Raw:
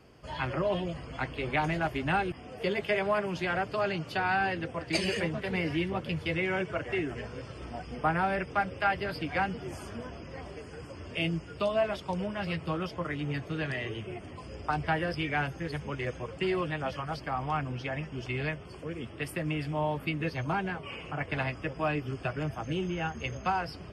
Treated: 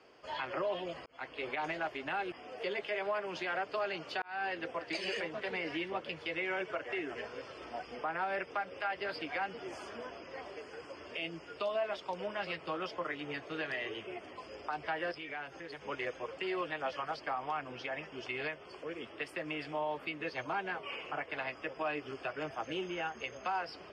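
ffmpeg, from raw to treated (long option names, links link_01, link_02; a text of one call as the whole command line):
ffmpeg -i in.wav -filter_complex "[0:a]asettb=1/sr,asplit=3[link_01][link_02][link_03];[link_01]atrim=end=15.114[link_04];[link_02]atrim=start=15.11:end=15.83,asetpts=PTS-STARTPTS,afade=type=in:duration=0.004:curve=qsin,afade=type=out:start_time=0.716:duration=0.004:curve=qsin,acompressor=threshold=-37dB:ratio=6:attack=3.2:release=140:knee=1:detection=peak[link_05];[link_03]atrim=start=15.826[link_06];[link_04][link_05]acrossfade=duration=0.004:curve1=hsin:curve2=qsin[link_07];[link_07][link_06]acrossfade=duration=0.004:curve1=qsin:curve2=hsin,asplit=3[link_08][link_09][link_10];[link_08]atrim=end=1.06,asetpts=PTS-STARTPTS,afade=type=out:start_time=1.056:duration=0.004:curve=hsin[link_11];[link_09]atrim=start=1.06:end=4.22,asetpts=PTS-STARTPTS,afade=type=in:duration=0.67:curve=qsin,afade=type=out:start_time=3.156:duration=0.004:curve=hsin[link_12];[link_10]atrim=start=4.22,asetpts=PTS-STARTPTS,afade=type=in:duration=0.47[link_13];[link_11][link_12][link_13]concat=n=3:v=0:a=1,acrossover=split=320 6900:gain=0.0891 1 0.0794[link_14][link_15][link_16];[link_14][link_15][link_16]amix=inputs=3:normalize=0,alimiter=level_in=2dB:limit=-24dB:level=0:latency=1:release=188,volume=-2dB" out.wav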